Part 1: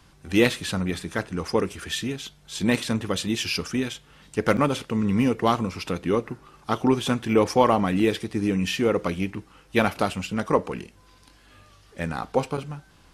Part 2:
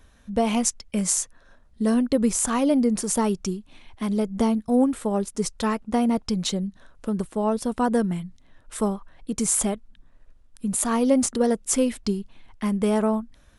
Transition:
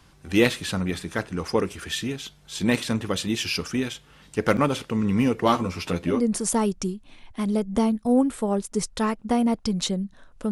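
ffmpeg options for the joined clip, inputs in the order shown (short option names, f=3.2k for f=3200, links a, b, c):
-filter_complex "[0:a]asettb=1/sr,asplit=3[a][b][c];[a]atrim=end=5.444[d];[b]atrim=start=5.44:end=6.26,asetpts=PTS-STARTPTS,afade=t=in:d=0.004:c=qsin,afade=t=out:st=0.816:d=0.004:c=qsin,asplit=2[e][f];[f]adelay=12,volume=-4.5dB[g];[e][g]amix=inputs=2:normalize=0,atrim=end_sample=36162[h];[c]atrim=start=6.256[i];[d][h]acrossfade=d=0.004:c1=hsin:c2=qsin[j];[j][i]acrossfade=d=0.004:c1=qsin:c2=hsin,apad=whole_dur=10.51,atrim=end=10.51,atrim=end=6.26,asetpts=PTS-STARTPTS[k];[1:a]atrim=start=2.69:end=7.14,asetpts=PTS-STARTPTS[l];[k][l]acrossfade=d=0.2:c1=tri:c2=tri"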